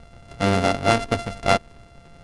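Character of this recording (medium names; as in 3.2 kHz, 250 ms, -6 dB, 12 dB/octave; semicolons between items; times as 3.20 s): a buzz of ramps at a fixed pitch in blocks of 64 samples; IMA ADPCM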